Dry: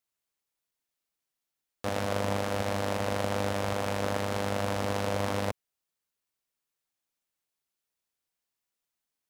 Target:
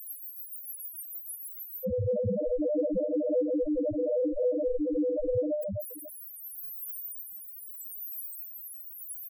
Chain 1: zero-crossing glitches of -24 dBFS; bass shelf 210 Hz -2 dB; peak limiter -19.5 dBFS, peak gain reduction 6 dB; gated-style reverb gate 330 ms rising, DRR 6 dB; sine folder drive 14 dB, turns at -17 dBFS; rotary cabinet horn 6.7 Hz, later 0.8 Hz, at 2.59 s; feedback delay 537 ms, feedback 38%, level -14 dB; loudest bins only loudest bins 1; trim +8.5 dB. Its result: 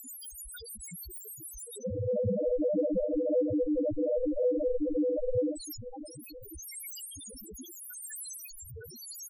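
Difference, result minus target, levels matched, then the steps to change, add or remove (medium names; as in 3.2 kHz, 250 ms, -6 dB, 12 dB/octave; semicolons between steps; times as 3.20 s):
zero-crossing glitches: distortion +6 dB
change: zero-crossing glitches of -30.5 dBFS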